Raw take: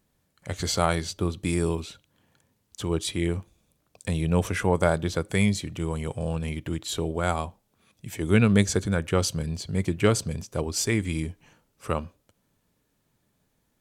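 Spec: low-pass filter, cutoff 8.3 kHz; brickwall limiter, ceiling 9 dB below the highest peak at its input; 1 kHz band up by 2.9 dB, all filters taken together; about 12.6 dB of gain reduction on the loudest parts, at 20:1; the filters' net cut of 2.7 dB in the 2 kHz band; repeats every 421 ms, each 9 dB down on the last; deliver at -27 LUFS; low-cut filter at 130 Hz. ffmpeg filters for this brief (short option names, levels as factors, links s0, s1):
-af "highpass=130,lowpass=8300,equalizer=f=1000:t=o:g=5.5,equalizer=f=2000:t=o:g=-5.5,acompressor=threshold=0.0447:ratio=20,alimiter=limit=0.0631:level=0:latency=1,aecho=1:1:421|842|1263|1684:0.355|0.124|0.0435|0.0152,volume=2.82"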